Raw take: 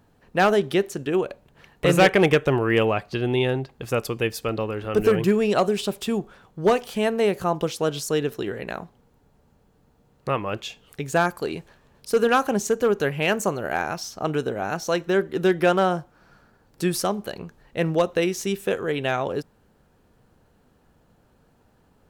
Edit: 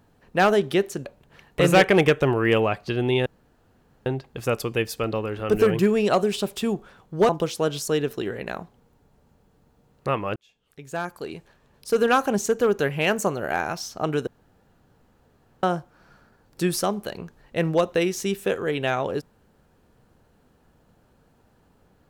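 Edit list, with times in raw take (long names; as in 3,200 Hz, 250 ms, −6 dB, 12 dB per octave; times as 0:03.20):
0:01.05–0:01.30: remove
0:03.51: splice in room tone 0.80 s
0:06.74–0:07.50: remove
0:10.57–0:12.34: fade in
0:14.48–0:15.84: fill with room tone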